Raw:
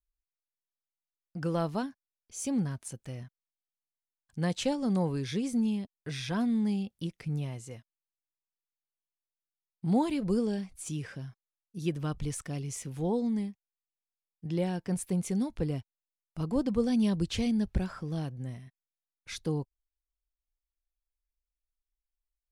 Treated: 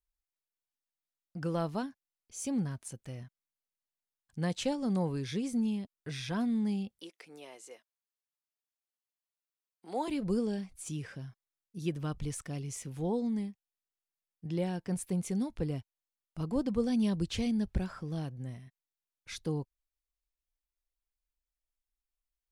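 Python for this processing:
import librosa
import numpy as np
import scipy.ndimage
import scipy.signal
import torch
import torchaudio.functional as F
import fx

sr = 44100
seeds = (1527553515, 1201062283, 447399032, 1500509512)

y = fx.highpass(x, sr, hz=370.0, slope=24, at=(6.99, 10.08))
y = F.gain(torch.from_numpy(y), -2.5).numpy()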